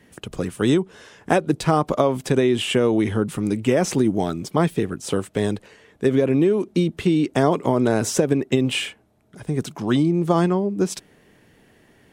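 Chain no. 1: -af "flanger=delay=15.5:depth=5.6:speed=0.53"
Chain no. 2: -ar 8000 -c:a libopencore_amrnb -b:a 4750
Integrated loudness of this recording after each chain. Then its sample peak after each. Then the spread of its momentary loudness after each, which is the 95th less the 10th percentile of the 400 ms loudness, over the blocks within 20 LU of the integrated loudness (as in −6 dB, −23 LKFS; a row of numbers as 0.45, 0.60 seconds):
−24.0, −22.0 LKFS; −5.5, −4.5 dBFS; 9, 8 LU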